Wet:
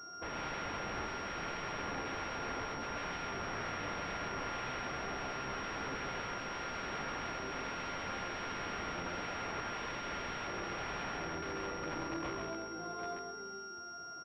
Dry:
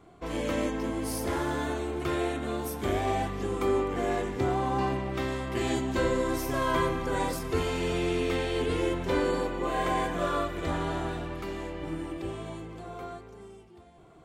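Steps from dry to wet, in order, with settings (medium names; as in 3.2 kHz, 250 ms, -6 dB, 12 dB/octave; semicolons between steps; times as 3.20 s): high-pass 220 Hz 6 dB/octave; peak limiter -23.5 dBFS, peak gain reduction 7.5 dB; integer overflow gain 32 dB; whistle 1.4 kHz -45 dBFS; delay 133 ms -3.5 dB; class-D stage that switches slowly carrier 5.6 kHz; trim -3 dB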